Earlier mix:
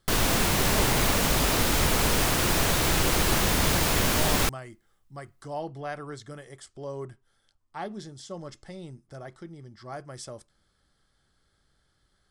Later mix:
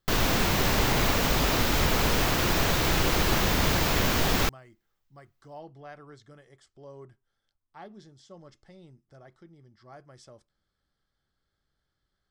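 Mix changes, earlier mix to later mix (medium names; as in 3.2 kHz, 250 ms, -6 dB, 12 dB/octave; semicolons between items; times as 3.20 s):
speech -10.0 dB; master: add peaking EQ 9.7 kHz -11 dB 0.67 oct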